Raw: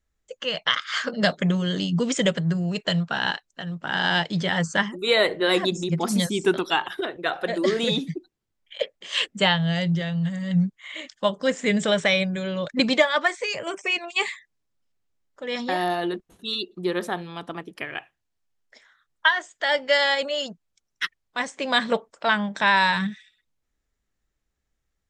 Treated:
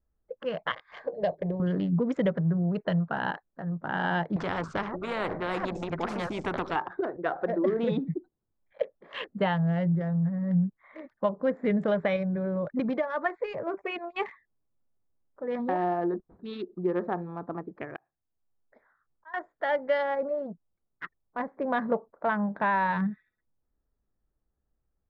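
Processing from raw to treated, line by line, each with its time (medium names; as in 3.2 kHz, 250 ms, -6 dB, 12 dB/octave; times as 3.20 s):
0.72–1.60 s: static phaser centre 560 Hz, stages 4
4.36–6.76 s: spectrum-flattening compressor 4:1
12.16–13.26 s: compression 2:1, threshold -25 dBFS
17.96–19.34 s: slow attack 528 ms
20.01–22.89 s: low-pass 1.3 kHz -> 3.3 kHz 6 dB/octave
whole clip: local Wiener filter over 15 samples; low-pass 1.3 kHz 12 dB/octave; compression 2:1, threshold -24 dBFS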